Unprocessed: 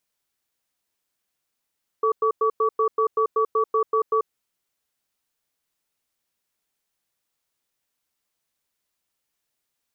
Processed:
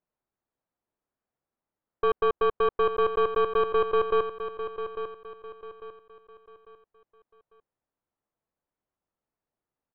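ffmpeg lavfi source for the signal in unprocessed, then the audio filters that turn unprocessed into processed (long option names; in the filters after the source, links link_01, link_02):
-f lavfi -i "aevalsrc='0.1*(sin(2*PI*441*t)+sin(2*PI*1140*t))*clip(min(mod(t,0.19),0.09-mod(t,0.19))/0.005,0,1)':duration=2.18:sample_rate=44100"
-filter_complex "[0:a]lowpass=1000,aeval=exprs='0.168*(cos(1*acos(clip(val(0)/0.168,-1,1)))-cos(1*PI/2))+0.0237*(cos(4*acos(clip(val(0)/0.168,-1,1)))-cos(4*PI/2))':channel_layout=same,asplit=2[link_01][link_02];[link_02]aecho=0:1:848|1696|2544|3392:0.316|0.111|0.0387|0.0136[link_03];[link_01][link_03]amix=inputs=2:normalize=0"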